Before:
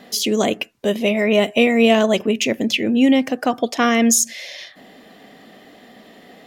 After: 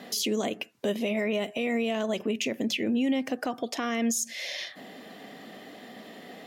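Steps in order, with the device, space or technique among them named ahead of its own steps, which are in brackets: podcast mastering chain (high-pass 110 Hz; compression 2.5:1, threshold -27 dBFS, peak gain reduction 12 dB; peak limiter -18.5 dBFS, peak gain reduction 8 dB; MP3 96 kbps 48 kHz)

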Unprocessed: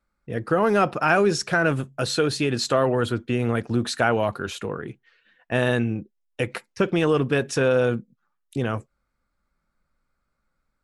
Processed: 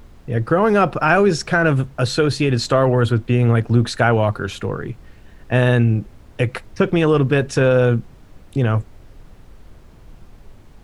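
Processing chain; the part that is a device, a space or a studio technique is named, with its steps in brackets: car interior (peaking EQ 110 Hz +8.5 dB 0.69 oct; treble shelf 4.9 kHz -6 dB; brown noise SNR 22 dB); trim +4.5 dB

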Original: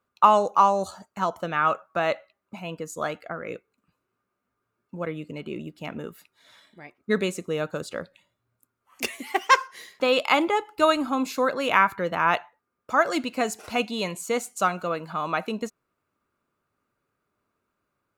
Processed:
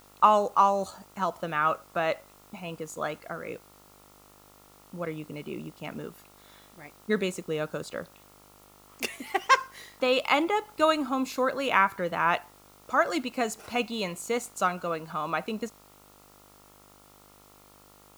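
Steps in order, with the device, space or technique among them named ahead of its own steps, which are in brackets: video cassette with head-switching buzz (mains buzz 50 Hz, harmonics 28, -55 dBFS -1 dB/octave; white noise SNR 29 dB); trim -3 dB

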